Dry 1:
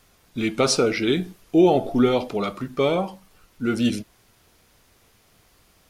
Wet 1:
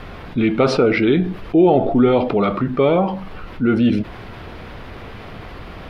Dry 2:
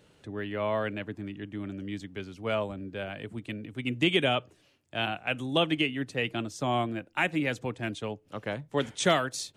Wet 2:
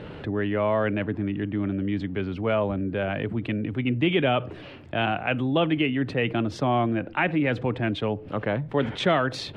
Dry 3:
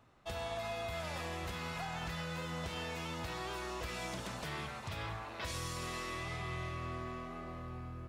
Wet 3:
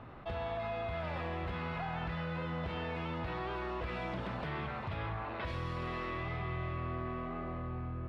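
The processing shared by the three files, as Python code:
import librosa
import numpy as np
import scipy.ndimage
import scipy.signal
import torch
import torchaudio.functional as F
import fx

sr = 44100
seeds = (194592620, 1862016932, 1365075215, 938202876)

y = fx.air_absorb(x, sr, metres=410.0)
y = fx.env_flatten(y, sr, amount_pct=50)
y = y * librosa.db_to_amplitude(3.0)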